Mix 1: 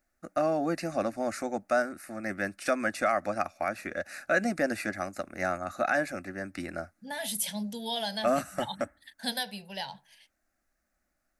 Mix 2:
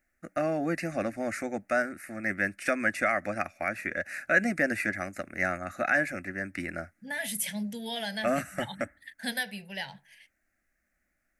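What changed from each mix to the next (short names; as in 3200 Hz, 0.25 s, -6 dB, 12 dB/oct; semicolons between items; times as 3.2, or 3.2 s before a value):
master: add graphic EQ 125/1000/2000/4000 Hz +4/-8/+11/-7 dB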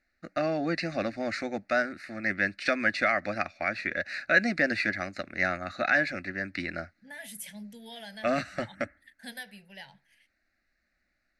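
first voice: add synth low-pass 4200 Hz, resonance Q 7.2; second voice -9.5 dB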